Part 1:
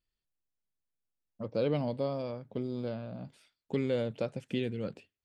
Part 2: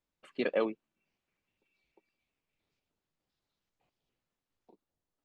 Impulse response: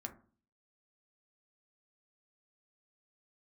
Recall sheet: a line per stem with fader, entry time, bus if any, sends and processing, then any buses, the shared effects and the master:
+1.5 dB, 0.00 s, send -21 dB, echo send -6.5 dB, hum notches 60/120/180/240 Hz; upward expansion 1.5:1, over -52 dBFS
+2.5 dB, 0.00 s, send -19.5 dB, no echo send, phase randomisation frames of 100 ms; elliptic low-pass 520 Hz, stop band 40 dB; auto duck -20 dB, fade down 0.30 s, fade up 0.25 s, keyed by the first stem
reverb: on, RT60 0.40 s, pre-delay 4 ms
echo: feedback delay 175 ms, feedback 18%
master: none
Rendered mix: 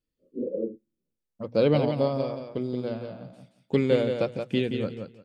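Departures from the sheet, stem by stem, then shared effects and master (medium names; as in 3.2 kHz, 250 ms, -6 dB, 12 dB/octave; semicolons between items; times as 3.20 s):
stem 1 +1.5 dB -> +9.0 dB; reverb return -9.5 dB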